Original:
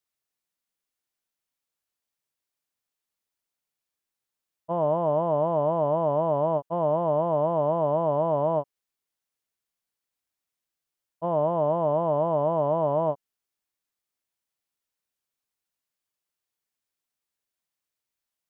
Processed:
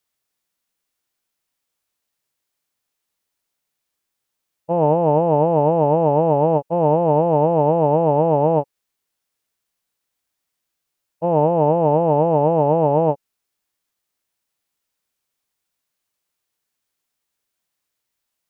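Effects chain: formant shift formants -2 st; trim +8 dB

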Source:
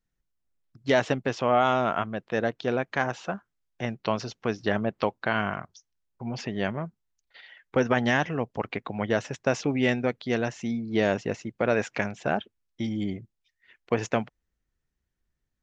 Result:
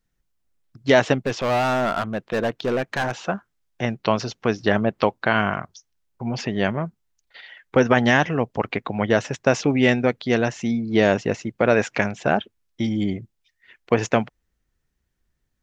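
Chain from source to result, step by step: 1.22–3.27 s: overload inside the chain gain 24.5 dB; trim +6.5 dB

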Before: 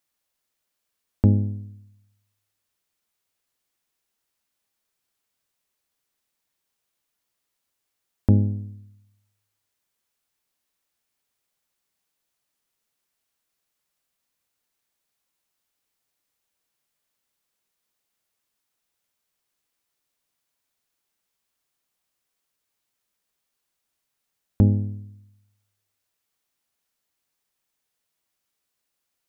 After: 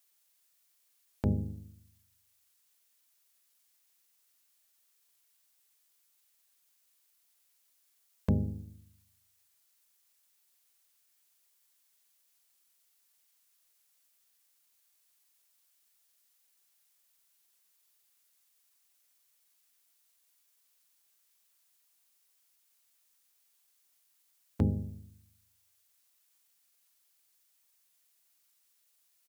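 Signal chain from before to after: high-pass 57 Hz 12 dB/octave; harmony voices -5 st -1 dB; tilt EQ +3 dB/octave; trim -4 dB

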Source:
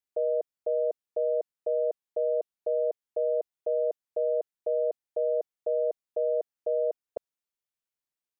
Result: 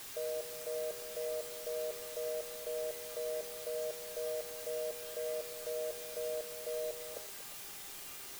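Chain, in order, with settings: gate -24 dBFS, range -12 dB; added noise white -49 dBFS; feedback comb 400 Hz, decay 0.56 s, mix 80%; on a send: repeats whose band climbs or falls 117 ms, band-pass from 290 Hz, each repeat 0.7 oct, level -9 dB; on the sum: trim +14 dB

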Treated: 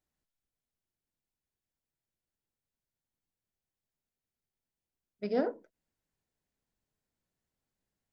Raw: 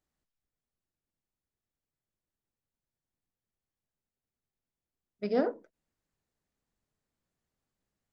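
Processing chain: band-stop 1.2 kHz, Q 12; trim -2 dB

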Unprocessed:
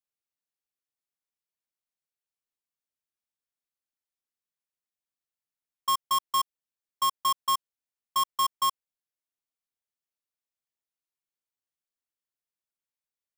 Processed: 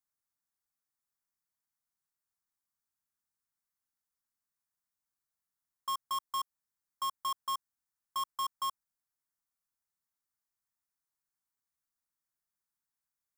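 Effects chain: static phaser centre 1.2 kHz, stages 4; saturation -35 dBFS, distortion -9 dB; trim +3.5 dB

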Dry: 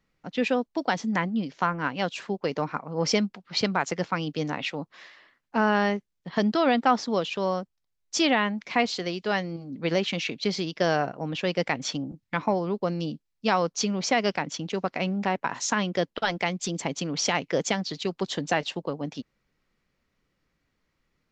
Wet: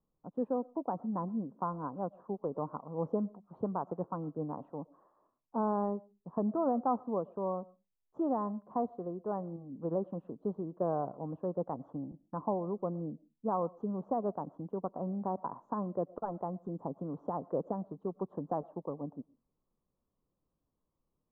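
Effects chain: elliptic low-pass 1.1 kHz, stop band 50 dB; on a send: peaking EQ 230 Hz +5 dB 1.7 oct + reverberation RT60 0.25 s, pre-delay 75 ms, DRR 23.5 dB; on the sum: trim -7.5 dB

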